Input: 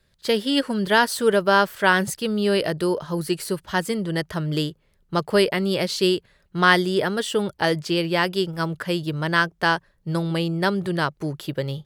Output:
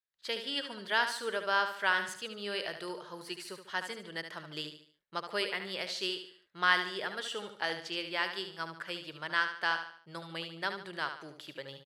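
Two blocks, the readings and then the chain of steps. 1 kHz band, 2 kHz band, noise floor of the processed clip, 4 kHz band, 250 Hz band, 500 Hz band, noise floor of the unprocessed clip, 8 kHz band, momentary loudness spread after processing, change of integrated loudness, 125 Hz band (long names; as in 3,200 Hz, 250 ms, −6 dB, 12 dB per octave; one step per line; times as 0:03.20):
−11.5 dB, −8.5 dB, −67 dBFS, −8.5 dB, −22.0 dB, −17.5 dB, −64 dBFS, −14.0 dB, 12 LU, −12.0 dB, −25.5 dB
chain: noise gate with hold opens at −51 dBFS
resonant band-pass 2,500 Hz, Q 0.54
repeating echo 73 ms, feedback 40%, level −8.5 dB
level −8.5 dB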